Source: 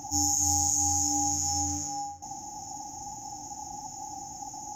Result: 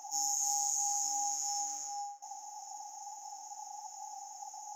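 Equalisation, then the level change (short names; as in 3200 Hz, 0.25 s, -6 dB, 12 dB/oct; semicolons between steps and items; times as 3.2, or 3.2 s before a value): ladder high-pass 600 Hz, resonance 25%; -1.0 dB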